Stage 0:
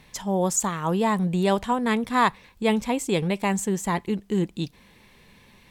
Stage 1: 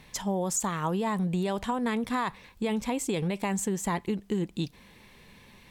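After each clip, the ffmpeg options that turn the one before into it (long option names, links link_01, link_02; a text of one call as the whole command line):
ffmpeg -i in.wav -af "alimiter=limit=-16dB:level=0:latency=1:release=32,acompressor=threshold=-25dB:ratio=6" out.wav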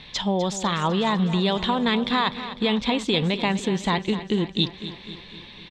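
ffmpeg -i in.wav -filter_complex "[0:a]lowpass=frequency=3700:width_type=q:width=4.8,asplit=2[link_01][link_02];[link_02]aecho=0:1:251|502|753|1004|1255|1506:0.224|0.132|0.0779|0.046|0.0271|0.016[link_03];[link_01][link_03]amix=inputs=2:normalize=0,volume=5.5dB" out.wav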